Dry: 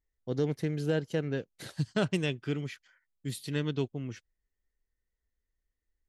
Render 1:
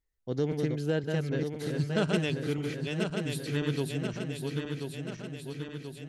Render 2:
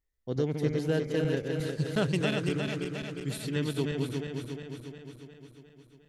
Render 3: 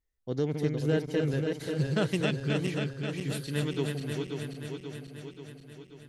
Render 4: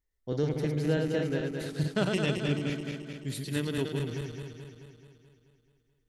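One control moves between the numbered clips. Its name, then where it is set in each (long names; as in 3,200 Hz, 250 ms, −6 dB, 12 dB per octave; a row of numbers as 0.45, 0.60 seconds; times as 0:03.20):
feedback delay that plays each chunk backwards, delay time: 517, 178, 267, 108 milliseconds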